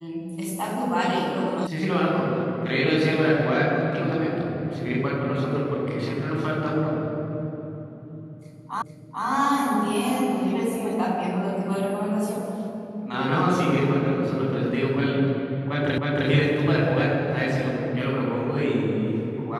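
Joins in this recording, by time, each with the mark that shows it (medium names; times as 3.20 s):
1.67 s: sound stops dead
8.82 s: repeat of the last 0.44 s
15.98 s: repeat of the last 0.31 s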